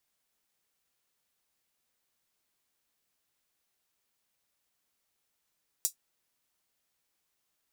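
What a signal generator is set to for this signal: closed hi-hat, high-pass 6.4 kHz, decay 0.11 s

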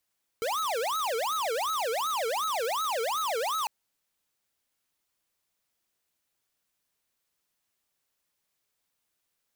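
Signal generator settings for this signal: siren wail 442–1300 Hz 2.7 per s square -29.5 dBFS 3.25 s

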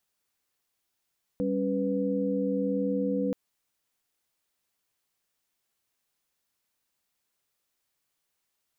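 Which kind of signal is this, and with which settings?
chord G3/C#4/B4 sine, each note -29.5 dBFS 1.93 s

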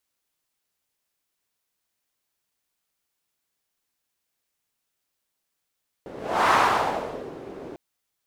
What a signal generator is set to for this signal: whoosh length 1.70 s, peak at 0.45 s, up 0.41 s, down 0.90 s, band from 400 Hz, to 1.1 kHz, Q 2.1, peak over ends 20 dB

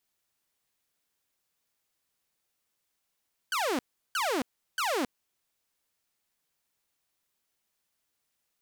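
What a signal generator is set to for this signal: burst of laser zaps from 1.6 kHz, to 230 Hz, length 0.27 s saw, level -24 dB, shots 3, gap 0.36 s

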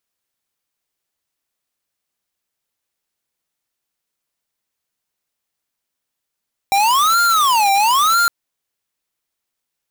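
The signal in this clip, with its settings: siren wail 786–1400 Hz 1 per s square -14 dBFS 1.56 s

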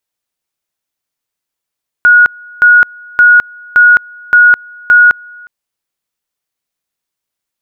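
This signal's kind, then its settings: two-level tone 1.45 kHz -1.5 dBFS, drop 28 dB, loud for 0.21 s, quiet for 0.36 s, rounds 6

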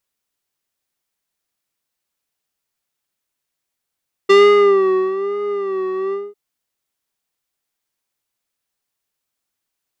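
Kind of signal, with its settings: synth patch with vibrato G4, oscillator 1 square, oscillator 2 level -15 dB, sub -26 dB, filter lowpass, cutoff 510 Hz, Q 0.82, filter envelope 3 oct, filter decay 0.46 s, attack 12 ms, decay 0.86 s, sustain -13 dB, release 0.21 s, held 1.84 s, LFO 1.1 Hz, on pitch 80 cents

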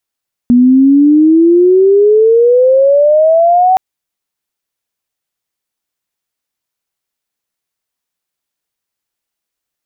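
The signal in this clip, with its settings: sweep logarithmic 240 Hz -> 760 Hz -3 dBFS -> -5 dBFS 3.27 s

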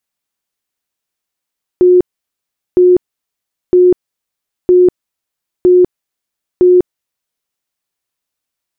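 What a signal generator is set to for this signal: tone bursts 361 Hz, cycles 71, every 0.96 s, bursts 6, -3.5 dBFS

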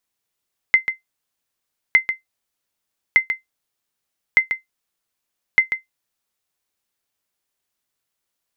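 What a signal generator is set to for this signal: sonar ping 2.07 kHz, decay 0.14 s, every 1.21 s, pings 5, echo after 0.14 s, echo -9 dB -3.5 dBFS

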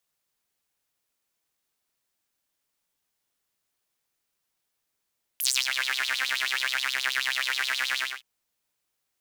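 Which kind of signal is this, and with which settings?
synth patch with filter wobble C3, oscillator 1 saw, noise -28.5 dB, filter highpass, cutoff 2.2 kHz, Q 5.4, filter envelope 2 oct, filter decay 0.30 s, filter sustain 10%, attack 2 ms, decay 0.27 s, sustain -10.5 dB, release 0.23 s, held 2.59 s, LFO 9.4 Hz, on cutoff 0.7 oct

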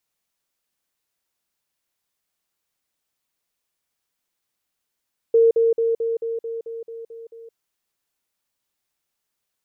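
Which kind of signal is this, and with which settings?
level ladder 458 Hz -11 dBFS, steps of -3 dB, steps 10, 0.17 s 0.05 s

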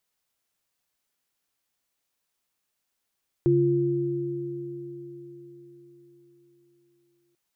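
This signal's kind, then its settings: sine partials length 3.89 s, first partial 140 Hz, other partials 347 Hz, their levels 4.5 dB, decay 4.04 s, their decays 4.57 s, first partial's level -22 dB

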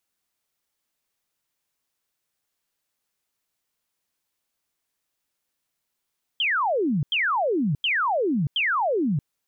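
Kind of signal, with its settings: burst of laser zaps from 3.3 kHz, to 130 Hz, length 0.63 s sine, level -20 dB, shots 4, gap 0.09 s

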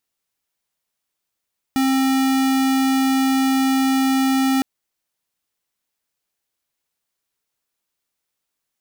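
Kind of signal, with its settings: tone square 266 Hz -17.5 dBFS 2.86 s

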